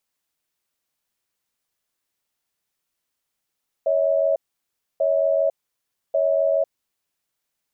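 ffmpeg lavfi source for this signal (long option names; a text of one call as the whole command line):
ffmpeg -f lavfi -i "aevalsrc='0.106*(sin(2*PI*557*t)+sin(2*PI*643*t))*clip(min(mod(t,1.14),0.5-mod(t,1.14))/0.005,0,1)':duration=2.9:sample_rate=44100" out.wav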